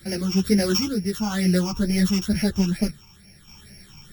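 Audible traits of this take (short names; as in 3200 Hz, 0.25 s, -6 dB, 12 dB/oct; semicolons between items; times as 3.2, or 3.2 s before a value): a buzz of ramps at a fixed pitch in blocks of 8 samples; phasing stages 8, 2.2 Hz, lowest notch 530–1100 Hz; random-step tremolo 2.3 Hz, depth 55%; a shimmering, thickened sound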